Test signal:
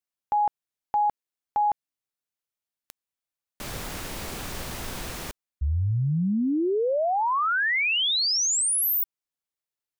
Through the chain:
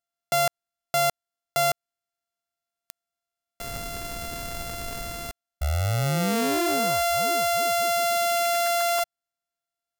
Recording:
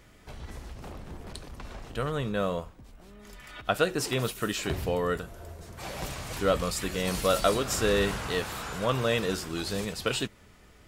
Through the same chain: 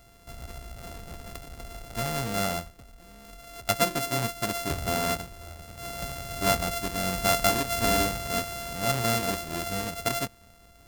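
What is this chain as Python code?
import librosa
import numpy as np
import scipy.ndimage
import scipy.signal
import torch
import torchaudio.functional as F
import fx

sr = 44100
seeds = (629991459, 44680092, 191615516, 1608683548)

y = np.r_[np.sort(x[:len(x) // 64 * 64].reshape(-1, 64), axis=1).ravel(), x[len(x) // 64 * 64:]]
y = fx.high_shelf(y, sr, hz=5800.0, db=5.5)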